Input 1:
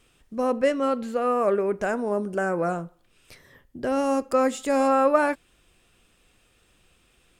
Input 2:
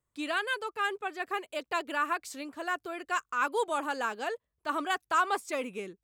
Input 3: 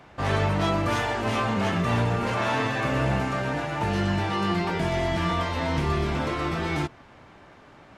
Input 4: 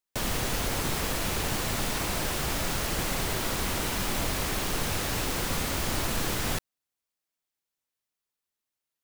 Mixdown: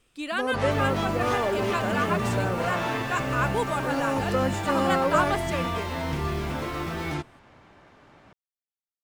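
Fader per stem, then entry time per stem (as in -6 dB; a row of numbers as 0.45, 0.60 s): -5.0, +1.5, -3.5, -18.0 dB; 0.00, 0.00, 0.35, 0.55 s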